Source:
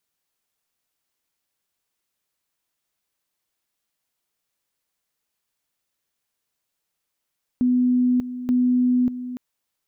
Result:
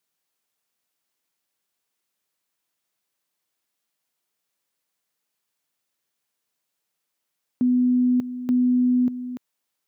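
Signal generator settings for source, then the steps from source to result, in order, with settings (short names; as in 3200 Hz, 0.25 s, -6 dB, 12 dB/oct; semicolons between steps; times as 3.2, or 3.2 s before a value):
two-level tone 249 Hz -15.5 dBFS, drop 12.5 dB, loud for 0.59 s, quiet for 0.29 s, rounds 2
HPF 130 Hz 12 dB/oct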